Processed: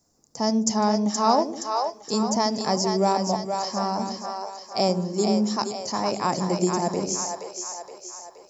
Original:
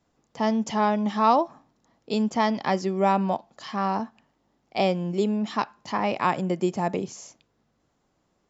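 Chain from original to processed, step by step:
drawn EQ curve 740 Hz 0 dB, 3,300 Hz −10 dB, 5,100 Hz +14 dB
echo with a time of its own for lows and highs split 440 Hz, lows 94 ms, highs 472 ms, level −5 dB

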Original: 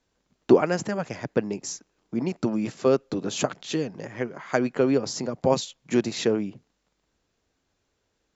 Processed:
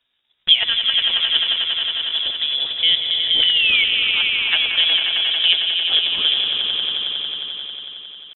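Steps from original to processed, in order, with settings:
sound drawn into the spectrogram rise, 0:03.31–0:03.86, 380–1,200 Hz −21 dBFS
high-frequency loss of the air 53 metres
echo that builds up and dies away 90 ms, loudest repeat 5, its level −8 dB
pitch shifter +4.5 semitones
voice inversion scrambler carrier 3,700 Hz
level +3 dB

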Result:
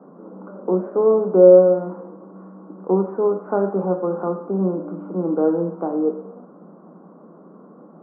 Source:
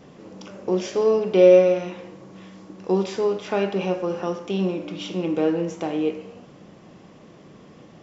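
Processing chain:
Chebyshev band-pass filter 170–1,400 Hz, order 5
level +3.5 dB

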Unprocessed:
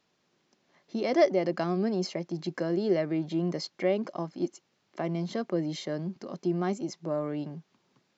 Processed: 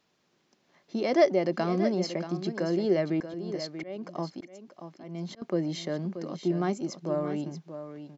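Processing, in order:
0:03.20–0:05.42: volume swells 408 ms
single-tap delay 631 ms −10.5 dB
level +1 dB

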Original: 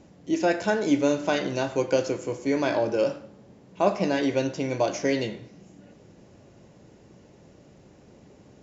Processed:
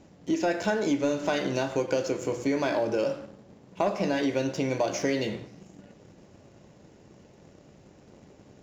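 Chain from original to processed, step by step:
mains-hum notches 60/120/180/240/300/360/420/480/540 Hz
leveller curve on the samples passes 1
downward compressor 3 to 1, threshold −26 dBFS, peak gain reduction 9.5 dB
level +1 dB

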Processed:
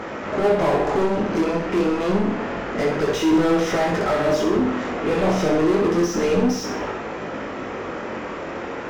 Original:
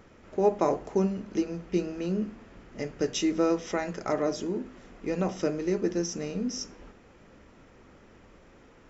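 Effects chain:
mid-hump overdrive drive 40 dB, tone 1,100 Hz, clips at −11 dBFS
chorus effect 0.28 Hz, delay 18.5 ms, depth 7.4 ms
flutter between parallel walls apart 10.9 metres, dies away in 0.57 s
level +1.5 dB

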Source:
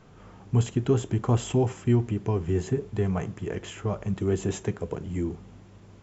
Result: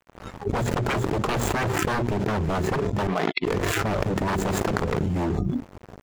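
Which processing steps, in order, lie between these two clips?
running median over 15 samples
0:03.07–0:03.47: loudspeaker in its box 460–3,900 Hz, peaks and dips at 480 Hz −8 dB, 950 Hz −8 dB, 1,800 Hz −4 dB, 2,600 Hz −8 dB
dead-zone distortion −47 dBFS
noise reduction from a noise print of the clip's start 28 dB
wave folding −27.5 dBFS
envelope flattener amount 100%
level +7 dB

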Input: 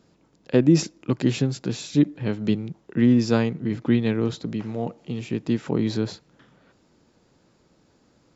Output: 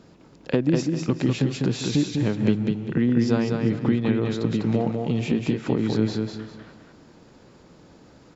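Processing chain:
on a send at −23 dB: convolution reverb, pre-delay 99 ms
on the sum: downward compressor 4 to 1, threshold −30 dBFS, peak gain reduction 15.5 dB
high-shelf EQ 5,400 Hz −7 dB
repeating echo 199 ms, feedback 27%, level −4 dB
level +9 dB

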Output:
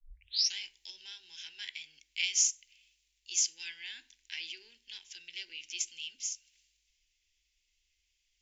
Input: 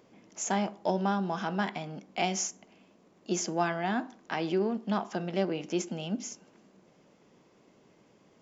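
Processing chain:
turntable start at the beginning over 0.56 s
inverse Chebyshev band-stop filter 100–1,300 Hz, stop band 40 dB
mains-hum notches 60/120/180/240 Hz
in parallel at −2 dB: downward compressor, threshold −54 dBFS, peak gain reduction 22.5 dB
on the sum: multiband upward and downward expander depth 40%
level +2.5 dB

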